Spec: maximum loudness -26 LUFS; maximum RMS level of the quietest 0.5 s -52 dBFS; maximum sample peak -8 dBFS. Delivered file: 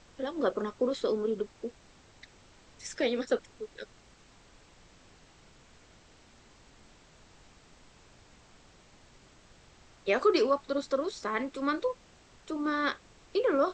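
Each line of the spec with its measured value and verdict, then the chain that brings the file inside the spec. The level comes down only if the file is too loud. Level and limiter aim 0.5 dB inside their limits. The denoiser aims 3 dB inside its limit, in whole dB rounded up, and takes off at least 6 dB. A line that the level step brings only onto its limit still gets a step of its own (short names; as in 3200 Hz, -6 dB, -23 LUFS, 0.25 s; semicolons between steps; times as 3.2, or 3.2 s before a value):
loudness -31.5 LUFS: OK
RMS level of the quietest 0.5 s -58 dBFS: OK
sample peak -14.0 dBFS: OK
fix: none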